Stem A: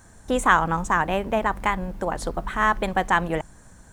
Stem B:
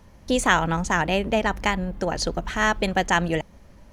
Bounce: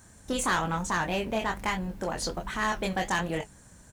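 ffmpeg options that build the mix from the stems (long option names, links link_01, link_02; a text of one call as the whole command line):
ffmpeg -i stem1.wav -i stem2.wav -filter_complex "[0:a]volume=0dB[link_01];[1:a]highpass=390,flanger=delay=7.4:depth=8.8:regen=56:speed=1.2:shape=triangular,adelay=23,volume=-0.5dB[link_02];[link_01][link_02]amix=inputs=2:normalize=0,highpass=frequency=83:poles=1,equalizer=frequency=810:width_type=o:width=3:gain=-6.5,asoftclip=type=tanh:threshold=-20dB" out.wav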